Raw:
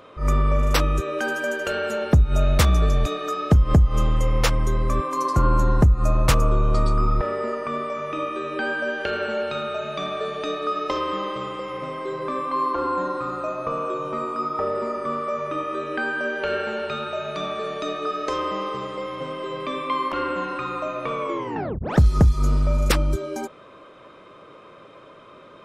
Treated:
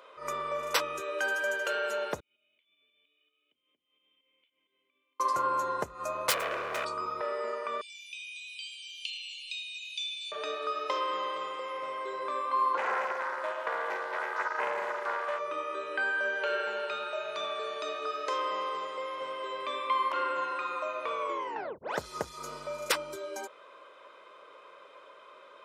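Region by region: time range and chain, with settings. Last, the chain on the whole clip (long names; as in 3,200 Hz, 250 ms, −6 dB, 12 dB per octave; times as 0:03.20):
0:02.20–0:05.20: first difference + downward compressor 10 to 1, threshold −43 dBFS + formant resonators in series i
0:06.30–0:06.85: phase distortion by the signal itself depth 0.76 ms + notch filter 900 Hz, Q 13
0:07.81–0:10.32: Butterworth high-pass 2,400 Hz 96 dB per octave + high-shelf EQ 3,700 Hz +10.5 dB + saturating transformer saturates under 1,100 Hz
0:12.77–0:15.39: high-pass filter 330 Hz 24 dB per octave + highs frequency-modulated by the lows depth 0.72 ms
whole clip: high-pass filter 600 Hz 12 dB per octave; comb filter 2 ms, depth 30%; level −4.5 dB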